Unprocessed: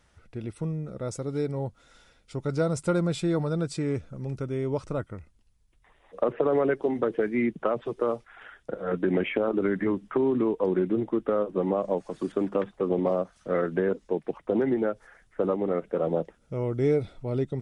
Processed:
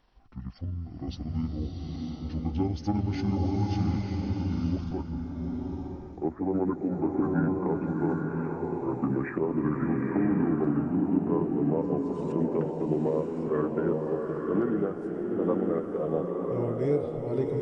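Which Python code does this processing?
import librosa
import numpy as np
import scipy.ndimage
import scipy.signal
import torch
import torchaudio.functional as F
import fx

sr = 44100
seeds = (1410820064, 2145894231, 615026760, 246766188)

y = fx.pitch_glide(x, sr, semitones=-11.0, runs='ending unshifted')
y = fx.dynamic_eq(y, sr, hz=2800.0, q=1.0, threshold_db=-53.0, ratio=4.0, max_db=-5)
y = fx.rev_bloom(y, sr, seeds[0], attack_ms=950, drr_db=0.5)
y = y * 10.0 ** (-2.0 / 20.0)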